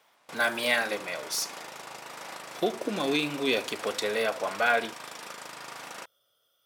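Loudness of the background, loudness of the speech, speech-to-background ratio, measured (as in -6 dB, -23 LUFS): -41.0 LUFS, -28.5 LUFS, 12.5 dB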